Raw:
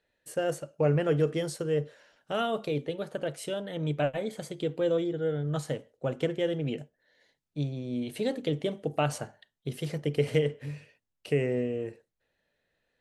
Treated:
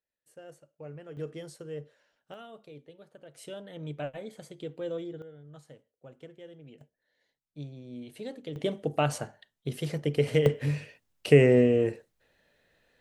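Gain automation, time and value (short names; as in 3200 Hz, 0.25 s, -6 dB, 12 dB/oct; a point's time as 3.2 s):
-19 dB
from 1.17 s -11 dB
from 2.34 s -18 dB
from 3.35 s -8 dB
from 5.22 s -19 dB
from 6.81 s -9.5 dB
from 8.56 s +1 dB
from 10.46 s +9 dB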